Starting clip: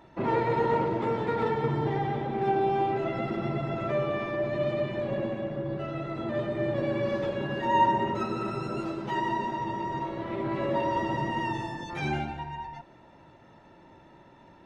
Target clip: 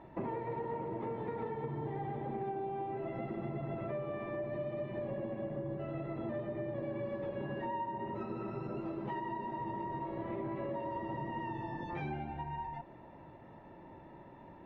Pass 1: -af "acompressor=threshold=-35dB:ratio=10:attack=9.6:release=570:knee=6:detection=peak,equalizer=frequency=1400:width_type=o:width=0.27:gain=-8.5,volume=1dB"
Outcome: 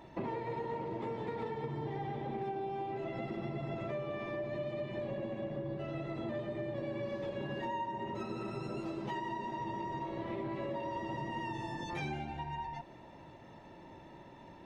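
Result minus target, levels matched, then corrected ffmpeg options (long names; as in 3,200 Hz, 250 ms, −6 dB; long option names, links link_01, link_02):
2,000 Hz band +3.0 dB
-af "acompressor=threshold=-35dB:ratio=10:attack=9.6:release=570:knee=6:detection=peak,lowpass=1900,equalizer=frequency=1400:width_type=o:width=0.27:gain=-8.5,volume=1dB"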